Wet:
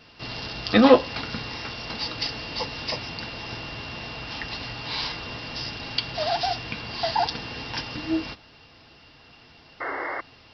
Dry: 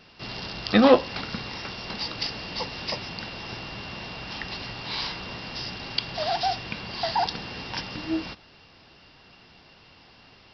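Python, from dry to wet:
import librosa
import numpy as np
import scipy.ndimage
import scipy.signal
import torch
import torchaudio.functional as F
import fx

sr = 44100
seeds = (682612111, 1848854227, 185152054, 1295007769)

y = fx.notch_comb(x, sr, f0_hz=190.0)
y = fx.spec_paint(y, sr, seeds[0], shape='noise', start_s=9.8, length_s=0.41, low_hz=270.0, high_hz=2200.0, level_db=-33.0)
y = y * 10.0 ** (2.5 / 20.0)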